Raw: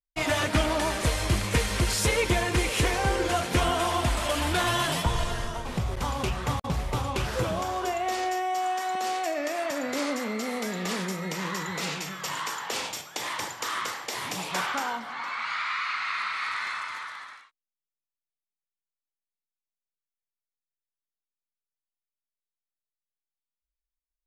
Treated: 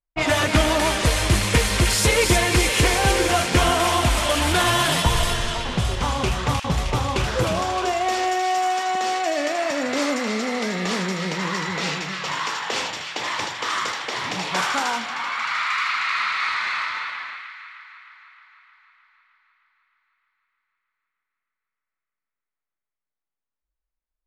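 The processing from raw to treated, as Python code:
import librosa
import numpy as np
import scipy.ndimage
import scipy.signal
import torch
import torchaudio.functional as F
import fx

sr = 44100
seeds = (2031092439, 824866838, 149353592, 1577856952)

y = fx.echo_wet_highpass(x, sr, ms=309, feedback_pct=67, hz=2100.0, wet_db=-3.5)
y = fx.env_lowpass(y, sr, base_hz=1500.0, full_db=-22.0)
y = y * 10.0 ** (6.0 / 20.0)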